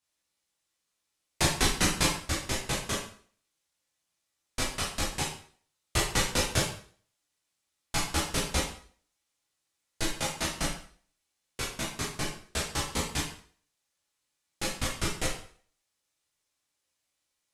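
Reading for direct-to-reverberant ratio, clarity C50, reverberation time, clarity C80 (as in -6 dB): -5.0 dB, 4.0 dB, 0.50 s, 8.5 dB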